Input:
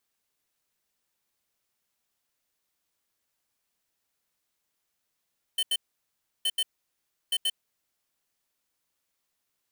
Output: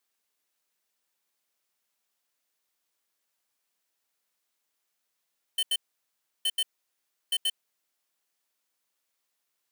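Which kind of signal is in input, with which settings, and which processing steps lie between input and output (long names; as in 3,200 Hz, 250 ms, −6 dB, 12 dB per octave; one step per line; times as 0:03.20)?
beeps in groups square 3,060 Hz, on 0.05 s, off 0.08 s, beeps 2, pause 0.69 s, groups 3, −26 dBFS
high-pass filter 340 Hz 6 dB per octave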